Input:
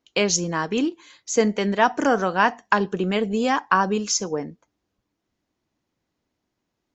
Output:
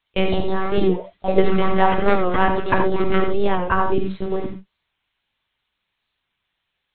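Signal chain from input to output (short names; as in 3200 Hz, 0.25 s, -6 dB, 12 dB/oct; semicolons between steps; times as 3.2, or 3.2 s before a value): low shelf 430 Hz +11.5 dB; gate -37 dBFS, range -18 dB; added noise blue -57 dBFS; in parallel at -6 dB: bit-crush 5-bit; on the sum: echoes that change speed 0.189 s, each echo +4 st, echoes 3, each echo -6 dB; monotone LPC vocoder at 8 kHz 190 Hz; non-linear reverb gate 0.11 s rising, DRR 5.5 dB; record warp 45 rpm, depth 100 cents; gain -6 dB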